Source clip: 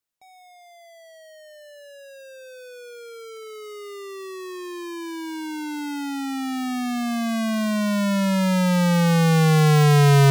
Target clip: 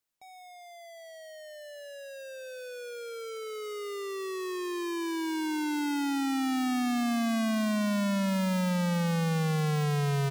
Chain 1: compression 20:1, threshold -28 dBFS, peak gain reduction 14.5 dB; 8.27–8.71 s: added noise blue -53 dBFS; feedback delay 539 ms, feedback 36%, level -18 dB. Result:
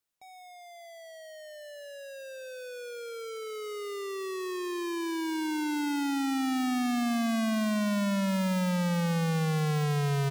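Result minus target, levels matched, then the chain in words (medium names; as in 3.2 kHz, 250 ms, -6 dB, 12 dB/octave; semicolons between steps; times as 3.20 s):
echo 217 ms early
compression 20:1, threshold -28 dBFS, peak gain reduction 14.5 dB; 8.27–8.71 s: added noise blue -53 dBFS; feedback delay 756 ms, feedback 36%, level -18 dB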